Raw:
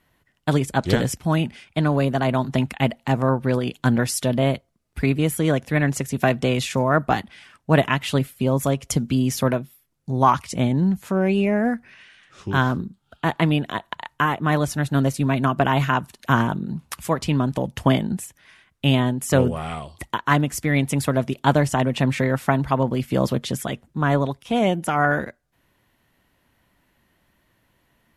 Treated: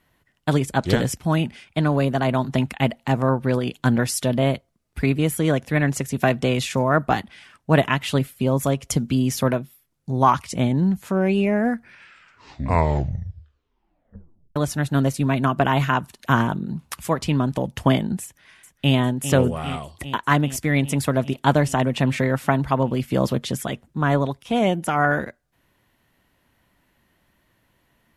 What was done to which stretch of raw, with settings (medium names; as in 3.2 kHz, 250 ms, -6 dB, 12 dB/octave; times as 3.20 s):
11.75 s: tape stop 2.81 s
18.23–18.96 s: echo throw 400 ms, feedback 75%, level -10.5 dB